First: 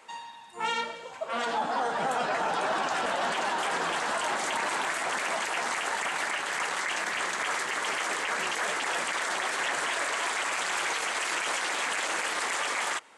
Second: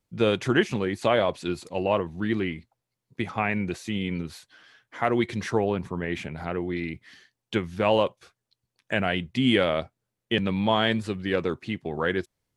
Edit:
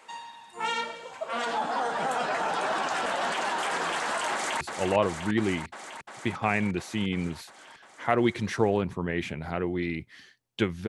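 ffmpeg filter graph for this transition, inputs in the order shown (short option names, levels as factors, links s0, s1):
-filter_complex "[0:a]apad=whole_dur=10.88,atrim=end=10.88,atrim=end=4.612[s0];[1:a]atrim=start=1.548:end=7.82[s1];[s0][s1]acrossfade=d=0.004:c1=hsin:c2=hsin,asplit=2[s2][s3];[s3]afade=t=in:st=4.32:d=0.01,afade=t=out:st=4.61:d=0.01,aecho=0:1:350|700|1050|1400|1750|2100|2450|2800|3150|3500|3850|4200:0.501187|0.40095|0.32076|0.256608|0.205286|0.164229|0.131383|0.105107|0.0840853|0.0672682|0.0538146|0.0430517[s4];[s2][s4]amix=inputs=2:normalize=0"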